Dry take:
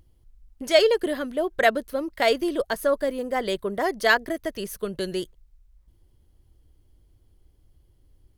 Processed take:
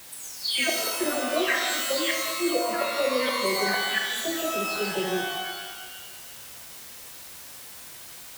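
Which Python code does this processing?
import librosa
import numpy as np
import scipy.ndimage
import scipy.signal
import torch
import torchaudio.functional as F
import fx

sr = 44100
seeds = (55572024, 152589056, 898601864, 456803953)

p1 = fx.spec_delay(x, sr, highs='early', ms=549)
p2 = fx.gate_flip(p1, sr, shuts_db=-15.0, range_db=-25)
p3 = fx.low_shelf(p2, sr, hz=110.0, db=-11.0)
p4 = fx.quant_dither(p3, sr, seeds[0], bits=6, dither='triangular')
p5 = p3 + (p4 * librosa.db_to_amplitude(-7.5))
p6 = scipy.signal.sosfilt(scipy.signal.butter(2, 55.0, 'highpass', fs=sr, output='sos'), p5)
p7 = fx.rev_shimmer(p6, sr, seeds[1], rt60_s=1.3, semitones=12, shimmer_db=-2, drr_db=1.0)
y = p7 * librosa.db_to_amplitude(-3.0)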